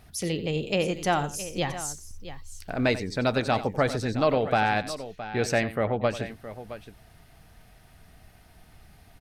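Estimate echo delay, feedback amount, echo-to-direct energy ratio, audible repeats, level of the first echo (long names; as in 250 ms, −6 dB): 91 ms, repeats not evenly spaced, −11.0 dB, 2, −14.5 dB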